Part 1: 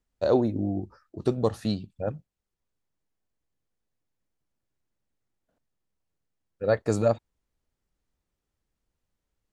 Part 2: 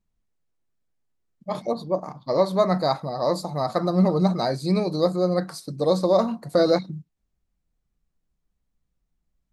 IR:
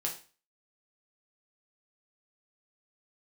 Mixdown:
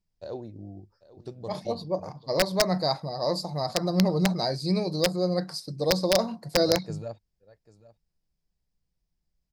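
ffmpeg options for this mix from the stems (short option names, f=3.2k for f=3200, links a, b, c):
-filter_complex "[0:a]volume=-14.5dB,asplit=2[a][b];[b]volume=-18.5dB[c];[1:a]aeval=exprs='(mod(2.82*val(0)+1,2)-1)/2.82':c=same,volume=-4dB[d];[c]aecho=0:1:793:1[e];[a][d][e]amix=inputs=3:normalize=0,equalizer=f=100:t=o:w=0.33:g=4,equalizer=f=160:t=o:w=0.33:g=3,equalizer=f=250:t=o:w=0.33:g=-5,equalizer=f=1.25k:t=o:w=0.33:g=-7,equalizer=f=5k:t=o:w=0.33:g=11"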